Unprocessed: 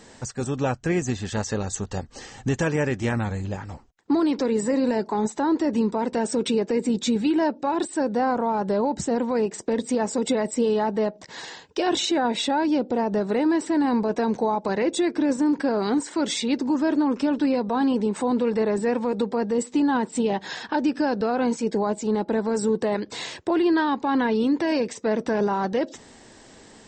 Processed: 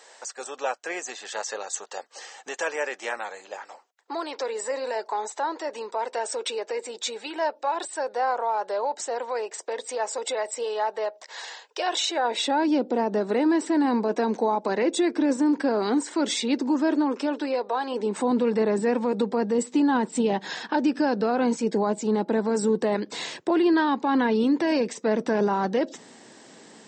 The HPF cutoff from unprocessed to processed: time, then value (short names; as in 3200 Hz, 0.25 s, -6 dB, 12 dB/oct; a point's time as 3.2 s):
HPF 24 dB/oct
12.05 s 520 Hz
12.67 s 220 Hz
16.69 s 220 Hz
17.84 s 460 Hz
18.26 s 150 Hz